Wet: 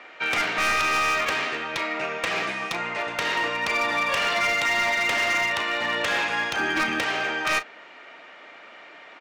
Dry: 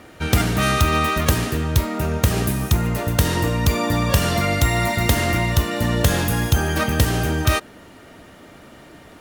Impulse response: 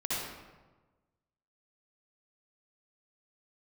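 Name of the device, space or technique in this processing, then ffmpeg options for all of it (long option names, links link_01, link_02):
megaphone: -filter_complex "[0:a]lowpass=frequency=8100:width=0.5412,lowpass=frequency=8100:width=1.3066,asettb=1/sr,asplit=3[link_01][link_02][link_03];[link_01]atrim=end=1.734[link_04];[link_02]atrim=start=1.73:end=2.81,asetpts=PTS-STARTPTS,afade=type=in:duration=0.004:curve=qsin,afade=type=out:start_time=1.076:duration=0.004:curve=qsin,aecho=1:1:6:0.48,atrim=end_sample=47628[link_05];[link_03]atrim=start=2.806[link_06];[link_04][link_05]acrossfade=duration=0.004:curve1=hsin:curve2=qsin[link_07];[link_07][link_06]acrossfade=duration=0.004:curve1=qsin:curve2=hsin,asettb=1/sr,asplit=3[link_08][link_09][link_10];[link_08]atrim=end=6.594[link_11];[link_09]atrim=start=6.59:end=7,asetpts=PTS-STARTPTS,afade=type=in:duration=0.004:curve=qsin,afade=type=out:start_time=0.406:duration=0.004:curve=qsin,lowshelf=frequency=400:width_type=q:width=3:gain=6[link_12];[link_10]atrim=start=6.996[link_13];[link_11][link_12]acrossfade=duration=0.004:curve1=hsin:curve2=qsin[link_14];[link_14][link_13]acrossfade=duration=0.004:curve1=qsin:curve2=hsin,highpass=690,lowpass=3500,equalizer=frequency=2300:width_type=o:width=0.51:gain=7,asoftclip=type=hard:threshold=-20.5dB,asplit=2[link_15][link_16];[link_16]adelay=35,volume=-13dB[link_17];[link_15][link_17]amix=inputs=2:normalize=0,volume=1.5dB"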